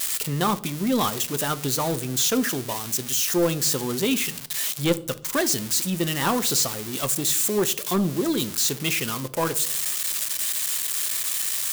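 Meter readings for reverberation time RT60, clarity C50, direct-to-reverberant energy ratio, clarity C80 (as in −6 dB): 0.65 s, 19.0 dB, 12.0 dB, 23.5 dB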